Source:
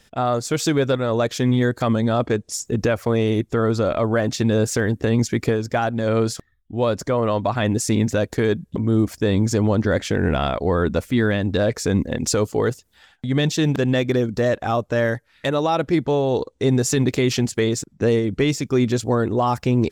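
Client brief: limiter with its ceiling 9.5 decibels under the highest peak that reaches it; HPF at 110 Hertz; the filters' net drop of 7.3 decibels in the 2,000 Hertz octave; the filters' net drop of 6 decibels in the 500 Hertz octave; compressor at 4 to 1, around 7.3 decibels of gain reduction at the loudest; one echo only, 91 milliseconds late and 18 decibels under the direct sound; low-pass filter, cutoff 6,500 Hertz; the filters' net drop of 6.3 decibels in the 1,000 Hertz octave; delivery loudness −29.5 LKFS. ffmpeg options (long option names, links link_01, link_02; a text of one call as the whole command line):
ffmpeg -i in.wav -af "highpass=110,lowpass=6500,equalizer=frequency=500:width_type=o:gain=-6,equalizer=frequency=1000:width_type=o:gain=-4.5,equalizer=frequency=2000:width_type=o:gain=-7.5,acompressor=threshold=-25dB:ratio=4,alimiter=level_in=1dB:limit=-24dB:level=0:latency=1,volume=-1dB,aecho=1:1:91:0.126,volume=5dB" out.wav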